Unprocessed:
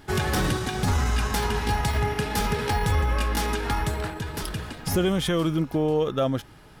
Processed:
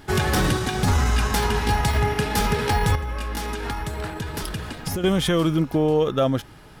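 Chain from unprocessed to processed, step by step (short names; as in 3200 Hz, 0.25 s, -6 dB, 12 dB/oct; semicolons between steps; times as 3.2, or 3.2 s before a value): 2.95–5.04 compressor 10:1, threshold -28 dBFS, peak gain reduction 9.5 dB; gain +3.5 dB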